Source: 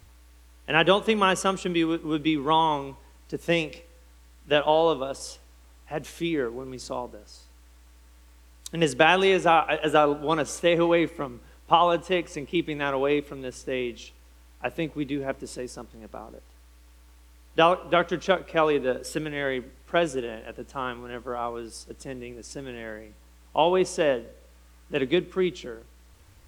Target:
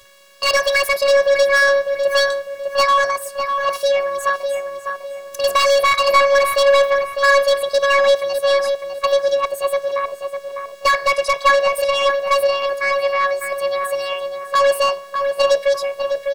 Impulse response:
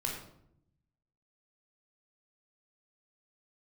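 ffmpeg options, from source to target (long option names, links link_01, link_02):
-filter_complex "[0:a]afftfilt=real='hypot(re,im)*cos(PI*b)':imag='0':win_size=512:overlap=0.75,asetrate=71442,aresample=44100,asplit=2[link_01][link_02];[link_02]highpass=frequency=720:poles=1,volume=25dB,asoftclip=type=tanh:threshold=-6.5dB[link_03];[link_01][link_03]amix=inputs=2:normalize=0,lowpass=frequency=4900:poles=1,volume=-6dB,asplit=2[link_04][link_05];[link_05]adelay=602,lowpass=frequency=2100:poles=1,volume=-5dB,asplit=2[link_06][link_07];[link_07]adelay=602,lowpass=frequency=2100:poles=1,volume=0.38,asplit=2[link_08][link_09];[link_09]adelay=602,lowpass=frequency=2100:poles=1,volume=0.38,asplit=2[link_10][link_11];[link_11]adelay=602,lowpass=frequency=2100:poles=1,volume=0.38,asplit=2[link_12][link_13];[link_13]adelay=602,lowpass=frequency=2100:poles=1,volume=0.38[link_14];[link_06][link_08][link_10][link_12][link_14]amix=inputs=5:normalize=0[link_15];[link_04][link_15]amix=inputs=2:normalize=0"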